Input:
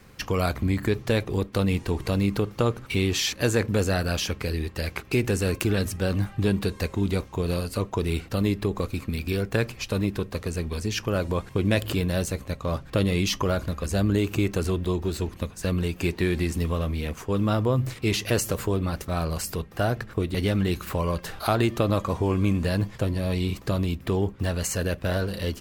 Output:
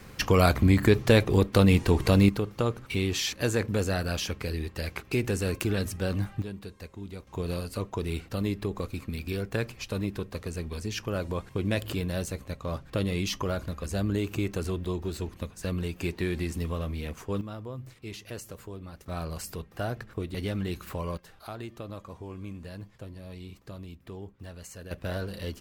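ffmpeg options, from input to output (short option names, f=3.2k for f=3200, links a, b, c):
-af "asetnsamples=n=441:p=0,asendcmd='2.29 volume volume -4dB;6.42 volume volume -15.5dB;7.27 volume volume -5.5dB;17.41 volume volume -16dB;19.06 volume volume -7.5dB;21.17 volume volume -17dB;24.91 volume volume -7dB',volume=4dB"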